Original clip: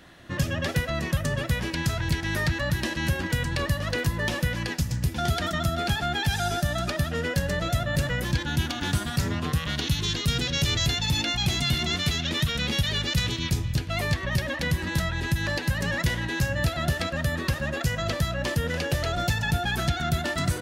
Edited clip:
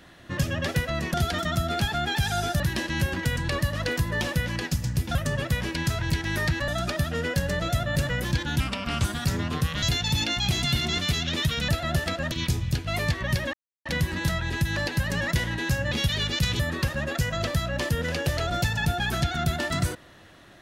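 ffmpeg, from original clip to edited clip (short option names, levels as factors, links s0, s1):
-filter_complex "[0:a]asplit=13[s0][s1][s2][s3][s4][s5][s6][s7][s8][s9][s10][s11][s12];[s0]atrim=end=1.142[s13];[s1]atrim=start=5.218:end=6.682[s14];[s2]atrim=start=2.668:end=5.222[s15];[s3]atrim=start=1.138:end=2.672[s16];[s4]atrim=start=6.678:end=8.604[s17];[s5]atrim=start=8.6:end=8.96,asetpts=PTS-STARTPTS,asetrate=35721,aresample=44100[s18];[s6]atrim=start=8.956:end=9.742[s19];[s7]atrim=start=10.798:end=12.662[s20];[s8]atrim=start=16.618:end=17.252[s21];[s9]atrim=start=13.338:end=14.56,asetpts=PTS-STARTPTS,afade=t=out:st=1.218:d=0.004:c=hsin,apad=pad_dur=0.32[s22];[s10]atrim=start=14.56:end=16.622,asetpts=PTS-STARTPTS,afade=t=in:d=0.004:c=hsin[s23];[s11]atrim=start=12.658:end=13.342[s24];[s12]atrim=start=17.248[s25];[s13][s14]acrossfade=d=0.004:c1=hsin:c2=hsin[s26];[s26][s15]acrossfade=d=0.004:c1=hsin:c2=hsin[s27];[s27][s16]acrossfade=d=0.004:c1=hsin:c2=hsin[s28];[s28][s17]acrossfade=d=0.004:c1=hsin:c2=hsin[s29];[s29][s18]acrossfade=d=0.004:c1=hsin:c2=hsin[s30];[s30][s19]acrossfade=d=0.004:c1=hsin:c2=hsin[s31];[s31][s20]acrossfade=d=0.004:c1=hsin:c2=hsin[s32];[s32][s21]acrossfade=d=0.004:c1=hsin:c2=hsin[s33];[s22][s23]concat=n=2:v=0:a=1[s34];[s33][s34]acrossfade=d=0.004:c1=hsin:c2=hsin[s35];[s35][s24]acrossfade=d=0.004:c1=hsin:c2=hsin[s36];[s36][s25]acrossfade=d=0.004:c1=hsin:c2=hsin"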